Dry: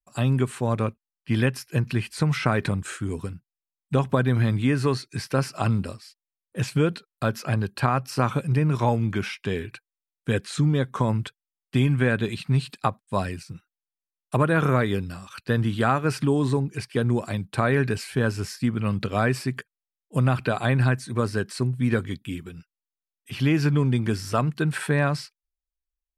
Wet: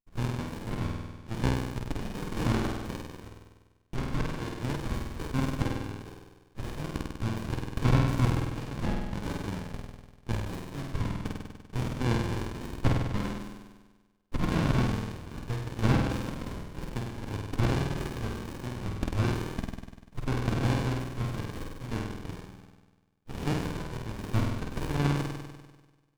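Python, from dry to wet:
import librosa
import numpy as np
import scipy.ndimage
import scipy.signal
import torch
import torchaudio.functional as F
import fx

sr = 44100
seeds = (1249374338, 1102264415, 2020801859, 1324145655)

y = scipy.signal.sosfilt(scipy.signal.cheby1(6, 6, 790.0, 'highpass', fs=sr, output='sos'), x)
y = fx.room_flutter(y, sr, wall_m=8.4, rt60_s=1.3)
y = fx.running_max(y, sr, window=65)
y = F.gain(torch.from_numpy(y), 6.0).numpy()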